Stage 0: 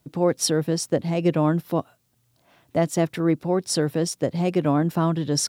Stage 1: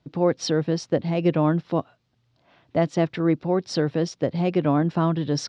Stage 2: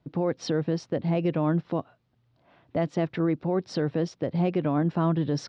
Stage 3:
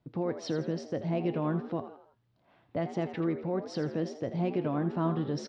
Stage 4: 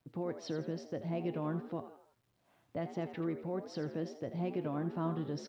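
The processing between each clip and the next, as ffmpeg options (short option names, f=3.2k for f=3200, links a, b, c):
-af "lowpass=f=4.8k:w=0.5412,lowpass=f=4.8k:w=1.3066"
-filter_complex "[0:a]highshelf=f=3.3k:g=-12,acrossover=split=2000[a][b];[a]alimiter=limit=-17dB:level=0:latency=1:release=97[c];[c][b]amix=inputs=2:normalize=0"
-filter_complex "[0:a]flanger=delay=8.3:depth=1.4:regen=78:speed=0.66:shape=triangular,asplit=2[a][b];[b]asplit=4[c][d][e][f];[c]adelay=82,afreqshift=69,volume=-11.5dB[g];[d]adelay=164,afreqshift=138,volume=-18.6dB[h];[e]adelay=246,afreqshift=207,volume=-25.8dB[i];[f]adelay=328,afreqshift=276,volume=-32.9dB[j];[g][h][i][j]amix=inputs=4:normalize=0[k];[a][k]amix=inputs=2:normalize=0,volume=-1dB"
-af "acrusher=bits=11:mix=0:aa=0.000001,volume=-6dB"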